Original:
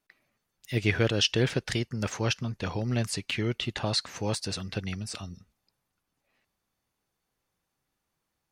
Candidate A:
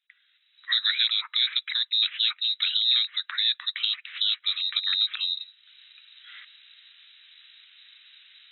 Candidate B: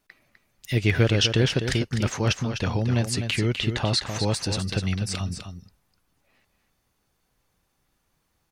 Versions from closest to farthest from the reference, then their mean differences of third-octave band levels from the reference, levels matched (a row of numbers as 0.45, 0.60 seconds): B, A; 4.0, 22.5 decibels